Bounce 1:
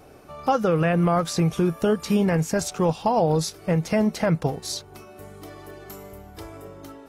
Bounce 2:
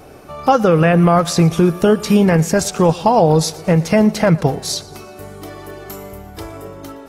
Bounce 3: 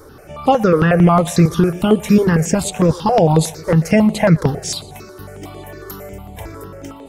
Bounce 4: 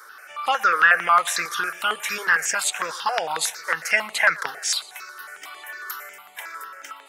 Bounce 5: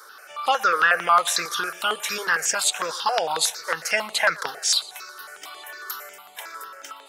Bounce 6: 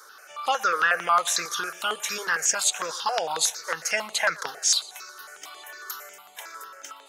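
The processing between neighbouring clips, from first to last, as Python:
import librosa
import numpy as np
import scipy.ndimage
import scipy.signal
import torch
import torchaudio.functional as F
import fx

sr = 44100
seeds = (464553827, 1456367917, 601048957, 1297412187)

y1 = fx.echo_feedback(x, sr, ms=117, feedback_pct=60, wet_db=-21)
y1 = F.gain(torch.from_numpy(y1), 8.5).numpy()
y2 = fx.phaser_held(y1, sr, hz=11.0, low_hz=720.0, high_hz=5500.0)
y2 = F.gain(torch.from_numpy(y2), 2.5).numpy()
y3 = fx.highpass_res(y2, sr, hz=1500.0, q=2.7)
y4 = fx.graphic_eq(y3, sr, hz=(500, 2000, 4000), db=(3, -7, 5))
y4 = F.gain(torch.from_numpy(y4), 1.0).numpy()
y5 = fx.peak_eq(y4, sr, hz=6500.0, db=7.5, octaves=0.3)
y5 = F.gain(torch.from_numpy(y5), -3.5).numpy()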